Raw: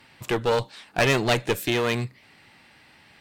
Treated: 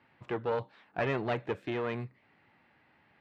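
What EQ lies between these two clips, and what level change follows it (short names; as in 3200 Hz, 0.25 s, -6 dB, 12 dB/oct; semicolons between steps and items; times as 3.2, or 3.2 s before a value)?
HPF 53 Hz; LPF 1800 Hz 12 dB/oct; low shelf 150 Hz -3 dB; -8.5 dB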